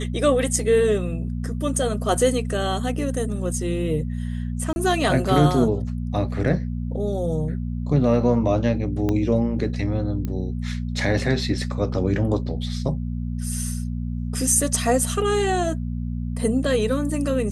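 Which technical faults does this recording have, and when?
hum 60 Hz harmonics 4 -27 dBFS
4.73–4.76 s: dropout 31 ms
9.09 s: pop -12 dBFS
10.25 s: pop -16 dBFS

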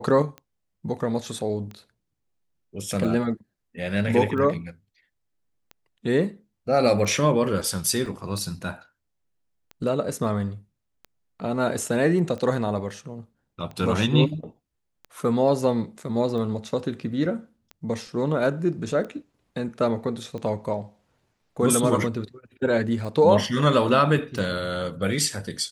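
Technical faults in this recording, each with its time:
tick 45 rpm -25 dBFS
8.06 s: dropout 2.3 ms

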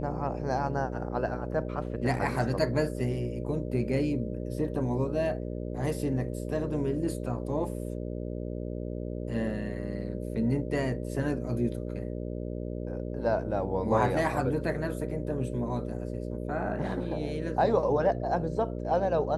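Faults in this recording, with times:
buzz 60 Hz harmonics 10 -35 dBFS

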